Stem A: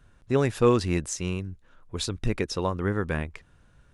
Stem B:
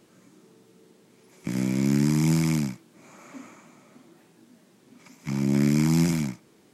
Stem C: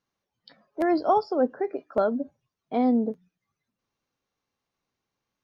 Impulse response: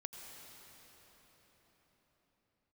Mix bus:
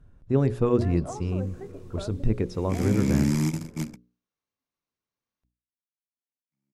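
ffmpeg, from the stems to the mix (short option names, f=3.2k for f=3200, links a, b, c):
-filter_complex "[0:a]tiltshelf=f=820:g=9,volume=-5.5dB,asplit=3[a][b][c];[b]volume=-11.5dB[d];[1:a]agate=range=-33dB:threshold=-54dB:ratio=3:detection=peak,adelay=1250,volume=-1dB[e];[2:a]bandreject=f=800:w=12,acompressor=threshold=-30dB:ratio=2,aeval=exprs='val(0)+0.001*(sin(2*PI*60*n/s)+sin(2*PI*2*60*n/s)/2+sin(2*PI*3*60*n/s)/3+sin(2*PI*4*60*n/s)/4+sin(2*PI*5*60*n/s)/5)':c=same,volume=-9dB[f];[c]apad=whole_len=352009[g];[e][g]sidechaingate=range=-57dB:threshold=-51dB:ratio=16:detection=peak[h];[3:a]atrim=start_sample=2205[i];[d][i]afir=irnorm=-1:irlink=0[j];[a][h][f][j]amix=inputs=4:normalize=0,bandreject=f=60:t=h:w=6,bandreject=f=120:t=h:w=6,bandreject=f=180:t=h:w=6,bandreject=f=240:t=h:w=6,bandreject=f=300:t=h:w=6,bandreject=f=360:t=h:w=6,bandreject=f=420:t=h:w=6,bandreject=f=480:t=h:w=6,bandreject=f=540:t=h:w=6"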